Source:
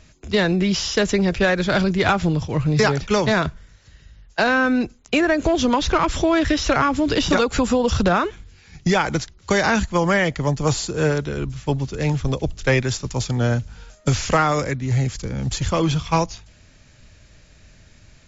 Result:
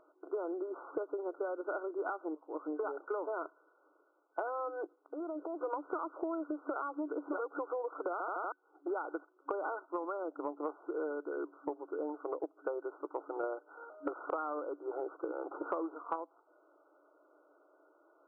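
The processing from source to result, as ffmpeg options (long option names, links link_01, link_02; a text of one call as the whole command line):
ffmpeg -i in.wav -filter_complex "[0:a]asettb=1/sr,asplit=3[link_01][link_02][link_03];[link_01]atrim=end=4.844[link_04];[link_02]atrim=start=4.84:end=5.61,asetpts=PTS-STARTPTS,afade=type=in:duration=0.004:curve=qsin,afade=type=out:start_time=0.766:duration=0.004:curve=qsin,acompressor=threshold=-35dB:ratio=4:attack=3.2:release=140:knee=1:detection=peak[link_05];[link_03]atrim=start=5.606[link_06];[link_04][link_05]acrossfade=duration=0.004:curve1=hsin:curve2=qsin[link_07];[link_07][link_06]acrossfade=duration=0.004:curve1=qsin:curve2=hsin,asplit=3[link_08][link_09][link_10];[link_08]afade=type=out:start_time=9.85:duration=0.02[link_11];[link_09]asubboost=boost=4.5:cutoff=190,afade=type=in:start_time=9.85:duration=0.02,afade=type=out:start_time=10.5:duration=0.02[link_12];[link_10]afade=type=in:start_time=10.5:duration=0.02[link_13];[link_11][link_12][link_13]amix=inputs=3:normalize=0,asettb=1/sr,asplit=3[link_14][link_15][link_16];[link_14]atrim=end=13.434[link_17];[link_15]atrim=start=13.43:end=16.16,asetpts=PTS-STARTPTS,afade=type=in:duration=0.004:curve=qsin,afade=type=out:start_time=2.726:duration=0.004:curve=qsin,acontrast=58[link_18];[link_16]atrim=start=16.156[link_19];[link_17][link_18]acrossfade=duration=0.004:curve1=hsin:curve2=qsin[link_20];[link_20][link_19]acrossfade=duration=0.004:curve1=qsin:curve2=hsin,asplit=7[link_21][link_22][link_23][link_24][link_25][link_26][link_27];[link_21]atrim=end=2.35,asetpts=PTS-STARTPTS,afade=type=out:start_time=2.346:duration=0.004:curve=hsin:silence=0.0794328[link_28];[link_22]atrim=start=2.35:end=8.202,asetpts=PTS-STARTPTS,afade=type=in:duration=0.62:silence=0.0794328[link_29];[link_23]atrim=start=8.118:end=8.202[link_30];[link_24]atrim=start=8.118:end=8.202[link_31];[link_25]atrim=start=8.118:end=8.202[link_32];[link_26]atrim=start=8.118:end=8.202[link_33];[link_27]atrim=start=8.518[link_34];[link_28][link_29]concat=n=2:v=0:a=1[link_35];[link_35][link_30]acrossfade=duration=0.004:curve1=hsin:curve2=hsin[link_36];[link_36][link_31]acrossfade=duration=0.004:curve1=hsin:curve2=hsin[link_37];[link_37][link_32]acrossfade=duration=0.004:curve1=hsin:curve2=hsin[link_38];[link_38][link_33]acrossfade=duration=0.004:curve1=hsin:curve2=hsin[link_39];[link_39][link_34]acrossfade=duration=0.004:curve1=hsin:curve2=hsin,afftfilt=real='re*between(b*sr/4096,280,1500)':imag='im*between(b*sr/4096,280,1500)':win_size=4096:overlap=0.75,acompressor=threshold=-30dB:ratio=12,volume=-4dB" out.wav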